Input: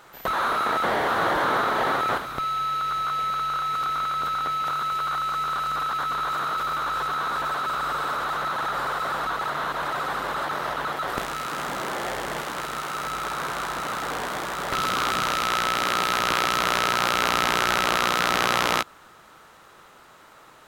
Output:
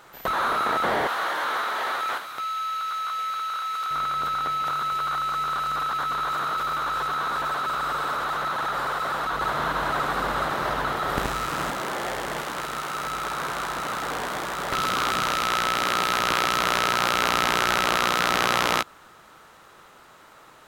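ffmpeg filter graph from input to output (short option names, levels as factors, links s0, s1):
-filter_complex "[0:a]asettb=1/sr,asplit=3[s0][s1][s2];[s0]atrim=end=1.074[s3];[s1]atrim=start=1.07:end=3.91,asetpts=PTS-STARTPTS,afade=t=in:d=0.004:c=qsin,afade=t=out:st=2.836:d=0.004:c=qsin,highpass=f=1400:p=1,asplit=2[s4][s5];[s5]adelay=16,volume=0.299[s6];[s4][s6]amix=inputs=2:normalize=0,atrim=end_sample=125244[s7];[s2]atrim=start=3.906[s8];[s3][s7]acrossfade=d=0.004:c1=hsin:c2=qsin[s9];[s9][s8]acrossfade=d=0.004:c1=qsin:c2=hsin,asettb=1/sr,asplit=3[s10][s11][s12];[s10]atrim=end=9.334[s13];[s11]atrim=start=9.33:end=11.71,asetpts=PTS-STARTPTS,afade=t=in:d=0.004:c=qsin,afade=t=out:st=2.376:d=0.004:c=qsin,lowshelf=f=220:g=8.5,aecho=1:1:77:0.668,atrim=end_sample=104958[s14];[s12]atrim=start=11.706[s15];[s13][s14]acrossfade=d=0.004:c1=hsin:c2=qsin[s16];[s16][s15]acrossfade=d=0.004:c1=qsin:c2=hsin"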